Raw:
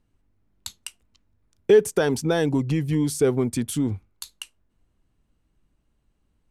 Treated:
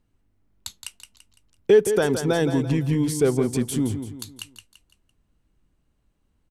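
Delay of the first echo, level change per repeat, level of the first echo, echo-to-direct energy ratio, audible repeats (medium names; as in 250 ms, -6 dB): 169 ms, -8.0 dB, -9.0 dB, -8.0 dB, 4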